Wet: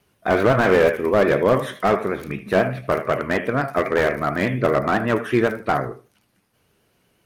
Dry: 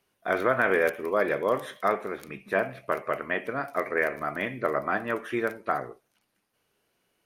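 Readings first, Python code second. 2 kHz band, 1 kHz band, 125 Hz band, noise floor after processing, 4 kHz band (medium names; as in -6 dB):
+4.5 dB, +6.5 dB, +17.0 dB, -66 dBFS, +11.0 dB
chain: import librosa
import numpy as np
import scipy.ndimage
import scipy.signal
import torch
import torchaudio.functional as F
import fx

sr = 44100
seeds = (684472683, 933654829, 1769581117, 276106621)

y = fx.echo_feedback(x, sr, ms=78, feedback_pct=18, wet_db=-15.0)
y = fx.vibrato(y, sr, rate_hz=8.1, depth_cents=55.0)
y = fx.peak_eq(y, sr, hz=86.0, db=10.5, octaves=2.8)
y = fx.slew_limit(y, sr, full_power_hz=80.0)
y = F.gain(torch.from_numpy(y), 7.5).numpy()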